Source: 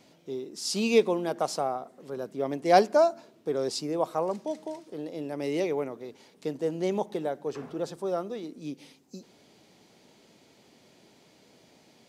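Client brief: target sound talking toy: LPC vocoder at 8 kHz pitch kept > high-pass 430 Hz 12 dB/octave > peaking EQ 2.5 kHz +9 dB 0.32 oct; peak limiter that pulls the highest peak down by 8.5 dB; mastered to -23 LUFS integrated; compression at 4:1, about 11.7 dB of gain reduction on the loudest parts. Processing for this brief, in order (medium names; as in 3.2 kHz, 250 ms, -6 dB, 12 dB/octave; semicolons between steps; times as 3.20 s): compression 4:1, threshold -29 dBFS; peak limiter -28 dBFS; LPC vocoder at 8 kHz pitch kept; high-pass 430 Hz 12 dB/octave; peaking EQ 2.5 kHz +9 dB 0.32 oct; trim +19 dB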